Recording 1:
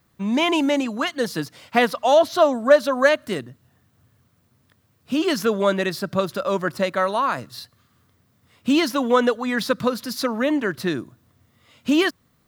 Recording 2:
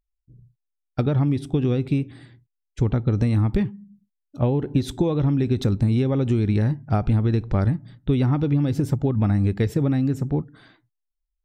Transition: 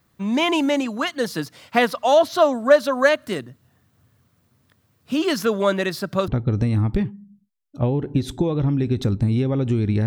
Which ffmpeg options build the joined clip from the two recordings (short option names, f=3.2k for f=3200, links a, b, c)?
-filter_complex "[0:a]apad=whole_dur=10.06,atrim=end=10.06,atrim=end=6.282[a];[1:a]atrim=start=2.878:end=6.66[b];[a][b]acrossfade=d=0.004:c1=hsin:c2=hsin"